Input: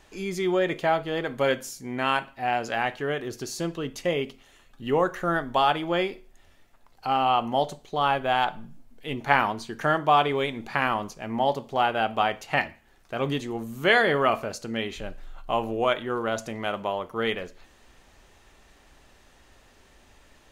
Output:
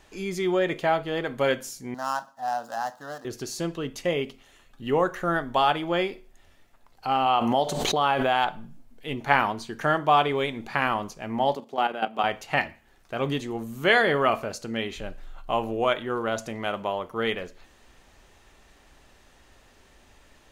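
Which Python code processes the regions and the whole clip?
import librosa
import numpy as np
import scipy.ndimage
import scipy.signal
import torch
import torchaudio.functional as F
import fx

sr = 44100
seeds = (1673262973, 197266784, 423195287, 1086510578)

y = fx.chain(x, sr, fx.median_filter(points=15),
    fx.highpass(hz=270.0, slope=12),
    fx.fixed_phaser(hz=950.0, stages=4), at=(1.94, 3.25))
y = fx.chain(y, sr, fx.low_shelf(hz=81.0, db=-11.5),
    fx.pre_swell(db_per_s=25.0), at=(7.26, 8.44))
y = fx.chain(y, sr, fx.highpass(hz=200.0, slope=24),
    fx.low_shelf(hz=290.0, db=5.5),
    fx.level_steps(step_db=11), at=(11.55, 12.24))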